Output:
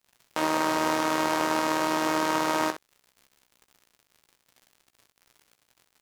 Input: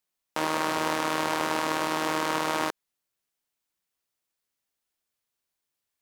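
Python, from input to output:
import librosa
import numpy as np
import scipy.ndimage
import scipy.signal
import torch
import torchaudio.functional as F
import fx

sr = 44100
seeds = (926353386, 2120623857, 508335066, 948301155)

y = fx.dmg_crackle(x, sr, seeds[0], per_s=87.0, level_db=-43.0)
y = fx.room_early_taps(y, sr, ms=(16, 64), db=(-8.5, -10.5))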